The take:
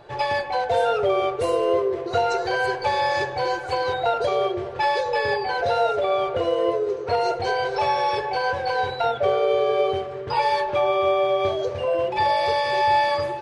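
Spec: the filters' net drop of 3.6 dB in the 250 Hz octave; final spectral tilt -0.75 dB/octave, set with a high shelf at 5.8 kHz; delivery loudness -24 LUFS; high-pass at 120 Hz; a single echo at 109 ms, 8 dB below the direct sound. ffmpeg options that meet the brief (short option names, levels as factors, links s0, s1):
-af "highpass=120,equalizer=f=250:t=o:g=-7.5,highshelf=f=5800:g=3.5,aecho=1:1:109:0.398,volume=0.841"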